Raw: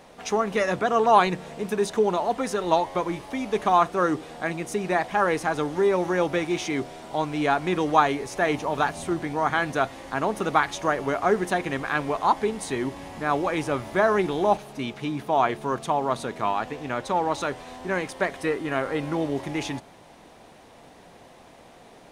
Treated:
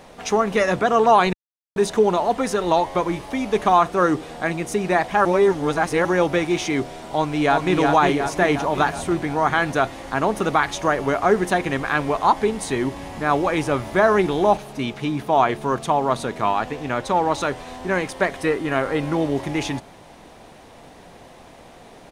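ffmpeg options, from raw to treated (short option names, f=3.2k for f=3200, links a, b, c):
-filter_complex "[0:a]asplit=2[a][b];[b]afade=t=in:st=7.12:d=0.01,afade=t=out:st=7.76:d=0.01,aecho=0:1:360|720|1080|1440|1800|2160|2520|2880|3240:0.630957|0.378574|0.227145|0.136287|0.0817721|0.0490632|0.0294379|0.0176628|0.0105977[c];[a][c]amix=inputs=2:normalize=0,asplit=5[d][e][f][g][h];[d]atrim=end=1.33,asetpts=PTS-STARTPTS,afade=t=out:st=1.326:d=0.004:c=hsin[i];[e]atrim=start=1.33:end=1.76,asetpts=PTS-STARTPTS,volume=0[j];[f]atrim=start=1.76:end=5.252,asetpts=PTS-STARTPTS,afade=t=in:d=0.004:c=hsin[k];[g]atrim=start=5.248:end=6.052,asetpts=PTS-STARTPTS,areverse[l];[h]atrim=start=6.048[m];[i][j][k]concat=n=3:v=0:a=1[n];[n][l]acrossfade=d=0.004:c1=hsin:c2=hsin[o];[o][m]acrossfade=d=0.004:c1=hsin:c2=hsin,lowshelf=f=74:g=6.5,alimiter=level_in=9dB:limit=-1dB:release=50:level=0:latency=1,volume=-4.5dB"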